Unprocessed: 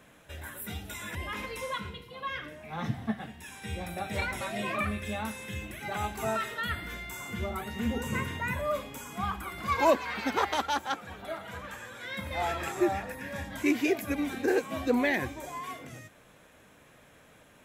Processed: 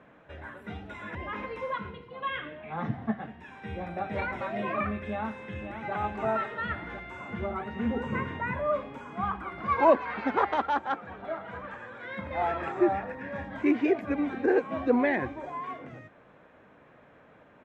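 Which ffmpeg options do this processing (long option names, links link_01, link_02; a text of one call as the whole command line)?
ffmpeg -i in.wav -filter_complex "[0:a]asettb=1/sr,asplit=3[link_01][link_02][link_03];[link_01]atrim=end=2.224[link_04];[link_02]atrim=start=2.22:end=2.73,asetpts=PTS-STARTPTS,afade=type=in:duration=0.004:curve=qsin,afade=type=out:start_time=0.506:duration=0.004:curve=qsin,lowpass=frequency=3300:width_type=q:width=3.4[link_05];[link_03]atrim=start=2.726[link_06];[link_04][link_05]acrossfade=duration=0.004:curve1=hsin:curve2=qsin[link_07];[link_07][link_06]acrossfade=duration=0.004:curve1=qsin:curve2=hsin,asplit=2[link_08][link_09];[link_09]afade=type=in:start_time=4.99:duration=0.01,afade=type=out:start_time=5.93:duration=0.01,aecho=0:1:530|1060|1590|2120|2650|3180|3710|4240|4770:0.354813|0.230629|0.149909|0.0974406|0.0633364|0.0411687|0.0267596|0.0173938|0.0113059[link_10];[link_08][link_10]amix=inputs=2:normalize=0,lowpass=1600,lowshelf=frequency=95:gain=-11.5,volume=3.5dB" out.wav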